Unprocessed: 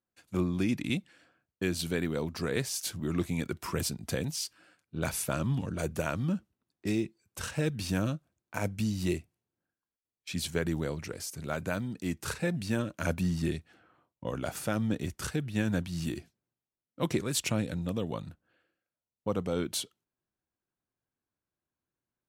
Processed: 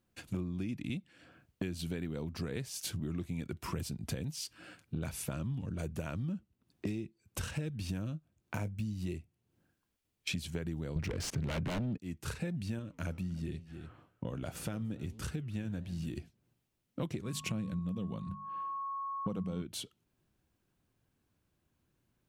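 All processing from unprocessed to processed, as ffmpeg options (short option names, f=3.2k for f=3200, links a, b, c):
-filter_complex "[0:a]asettb=1/sr,asplit=3[a][b][c];[a]atrim=end=8.104[d];[b]atrim=start=8.1:end=8.94,asetpts=PTS-STARTPTS,afade=t=in:d=0.004:c=qsin,afade=t=out:st=0.836:d=0.004:c=qsin,deesser=0.95,asplit=2[e][f];[f]adelay=19,volume=-12dB[g];[e][g]amix=inputs=2:normalize=0,atrim=end_sample=37044[h];[c]atrim=start=8.936[i];[d][h]acrossfade=d=0.004:c1=hsin:c2=qsin[j];[j][i]acrossfade=d=0.004:c1=qsin:c2=hsin,asettb=1/sr,asplit=3[k][l][m];[k]atrim=end=10.964[n];[l]atrim=start=10.96:end=11.98,asetpts=PTS-STARTPTS,afade=t=in:d=0.004:c=qsin,afade=t=out:st=1.016:d=0.004:c=qsin,aeval=exprs='0.178*sin(PI/2*7.08*val(0)/0.178)':c=same,adynamicsmooth=sensitivity=3:basefreq=1.5k[o];[m]atrim=start=11.976[p];[n][o]acrossfade=d=0.004:c1=hsin:c2=qsin[q];[q][p]acrossfade=d=0.004:c1=qsin:c2=hsin,asettb=1/sr,asplit=3[r][s][t];[r]atrim=end=12.794[u];[s]atrim=start=12.79:end=16.17,asetpts=PTS-STARTPTS,afade=t=in:d=0.004:c=qsin,afade=t=out:st=3.376:d=0.004:c=qsin,aecho=1:1:292:0.0841,atrim=end_sample=149058,flanger=delay=6.4:depth=8.5:regen=-87:speed=1.2:shape=sinusoidal[v];[t]atrim=start=16.166[w];[u][v]acrossfade=d=0.004:c1=hsin:c2=qsin[x];[x][w]acrossfade=d=0.004:c1=qsin:c2=hsin,asettb=1/sr,asplit=3[y][z][aa];[y]atrim=end=17.244[ab];[z]atrim=start=17.24:end=19.62,asetpts=PTS-STARTPTS,afade=t=in:d=0.004:c=qsin,afade=t=out:st=2.376:d=0.004:c=qsin,equalizer=f=190:t=o:w=0.27:g=12.5,bandreject=f=50:t=h:w=6,bandreject=f=100:t=h:w=6,bandreject=f=150:t=h:w=6,bandreject=f=200:t=h:w=6,bandreject=f=250:t=h:w=6,aeval=exprs='val(0)+0.00794*sin(2*PI*1100*n/s)':c=same[ac];[aa]atrim=start=19.616[ad];[ab][ac]acrossfade=d=0.004:c1=hsin:c2=qsin[ae];[ae][ad]acrossfade=d=0.004:c1=qsin:c2=hsin,lowshelf=f=290:g=11.5,acompressor=threshold=-45dB:ratio=6,equalizer=f=2.8k:t=o:w=0.78:g=4,volume=8dB"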